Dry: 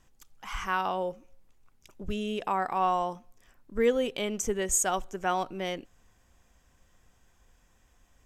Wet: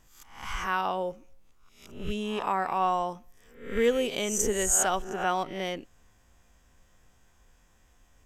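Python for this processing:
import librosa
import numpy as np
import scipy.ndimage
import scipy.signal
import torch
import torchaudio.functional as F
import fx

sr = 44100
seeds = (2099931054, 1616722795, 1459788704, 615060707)

y = fx.spec_swells(x, sr, rise_s=0.51)
y = fx.high_shelf(y, sr, hz=6600.0, db=6.5, at=(3.84, 4.63))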